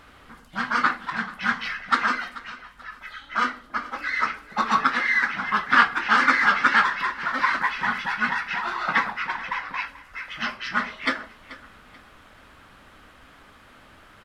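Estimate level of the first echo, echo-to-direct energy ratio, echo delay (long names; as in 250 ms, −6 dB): −18.0 dB, −17.5 dB, 435 ms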